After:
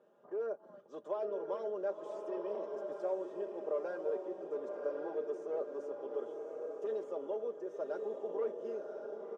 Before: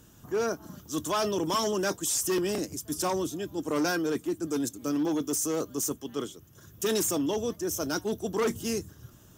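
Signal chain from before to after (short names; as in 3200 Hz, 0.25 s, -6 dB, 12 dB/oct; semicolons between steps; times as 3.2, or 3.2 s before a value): comb 5 ms, depth 68%; compressor 3:1, threshold -33 dBFS, peak gain reduction 9.5 dB; ladder band-pass 570 Hz, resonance 70%; on a send: diffused feedback echo 1.058 s, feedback 42%, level -4 dB; on the sum: gain +5 dB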